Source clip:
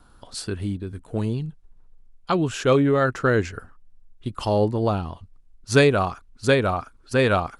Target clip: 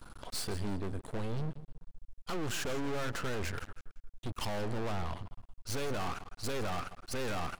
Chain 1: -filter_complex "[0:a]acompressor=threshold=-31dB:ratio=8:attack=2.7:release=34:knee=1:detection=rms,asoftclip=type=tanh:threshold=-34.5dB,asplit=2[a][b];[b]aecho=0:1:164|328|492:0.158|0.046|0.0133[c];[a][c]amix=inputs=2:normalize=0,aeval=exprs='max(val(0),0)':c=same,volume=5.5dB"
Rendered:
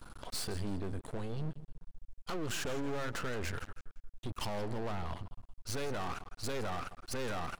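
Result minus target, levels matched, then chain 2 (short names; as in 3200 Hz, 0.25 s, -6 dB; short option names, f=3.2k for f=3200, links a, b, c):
compressor: peak gain reduction +7 dB
-filter_complex "[0:a]acompressor=threshold=-23dB:ratio=8:attack=2.7:release=34:knee=1:detection=rms,asoftclip=type=tanh:threshold=-34.5dB,asplit=2[a][b];[b]aecho=0:1:164|328|492:0.158|0.046|0.0133[c];[a][c]amix=inputs=2:normalize=0,aeval=exprs='max(val(0),0)':c=same,volume=5.5dB"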